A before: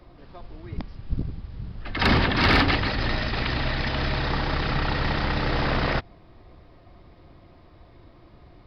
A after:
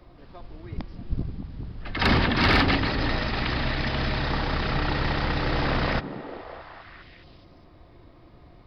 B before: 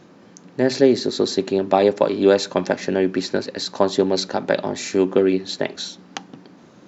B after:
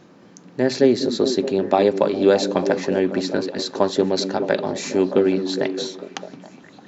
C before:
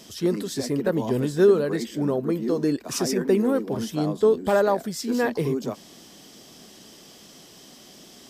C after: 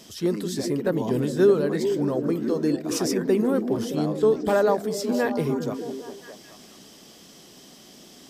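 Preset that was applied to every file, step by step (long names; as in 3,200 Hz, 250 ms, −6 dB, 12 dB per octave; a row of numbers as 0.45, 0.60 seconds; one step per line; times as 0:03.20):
echo through a band-pass that steps 206 ms, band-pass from 220 Hz, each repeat 0.7 octaves, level −4.5 dB
level −1 dB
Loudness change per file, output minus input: −1.0, −0.5, 0.0 LU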